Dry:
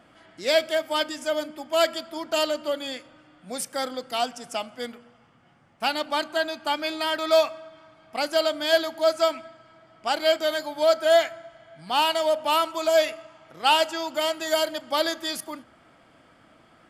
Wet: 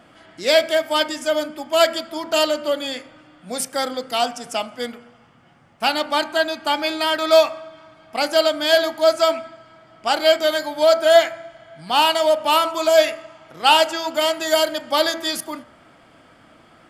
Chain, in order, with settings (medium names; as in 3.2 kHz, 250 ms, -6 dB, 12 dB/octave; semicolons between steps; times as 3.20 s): de-hum 65.68 Hz, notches 37; trim +6 dB